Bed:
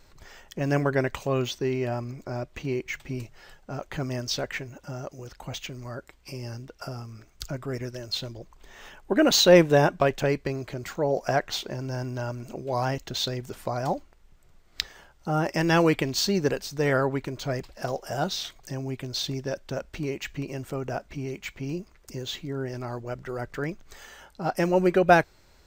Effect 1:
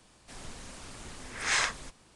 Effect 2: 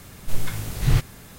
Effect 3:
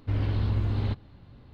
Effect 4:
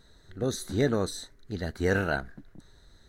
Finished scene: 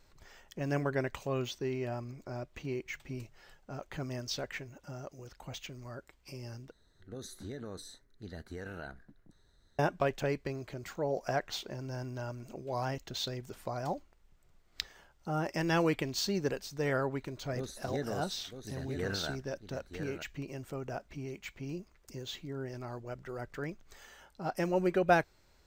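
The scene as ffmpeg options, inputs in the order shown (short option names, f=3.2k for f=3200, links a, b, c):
-filter_complex "[4:a]asplit=2[a][b];[0:a]volume=-8dB[c];[a]acompressor=threshold=-27dB:ratio=6:attack=3.2:release=140:knee=1:detection=peak[d];[b]aecho=1:1:955:0.422[e];[c]asplit=2[f][g];[f]atrim=end=6.714[h];[d]atrim=end=3.08,asetpts=PTS-STARTPTS,volume=-11dB[i];[g]atrim=start=9.786[j];[e]atrim=end=3.08,asetpts=PTS-STARTPTS,volume=-11.5dB,afade=t=in:d=0.004:c=hsin,afade=t=out:st=3.076:d=0.004:c=hsin,adelay=17150[k];[h][i]acrossfade=d=0.004:c1=hsin:c2=hsin[l];[l][j]acrossfade=d=0.004:c1=hsin:c2=hsin[m];[m][k]amix=inputs=2:normalize=0"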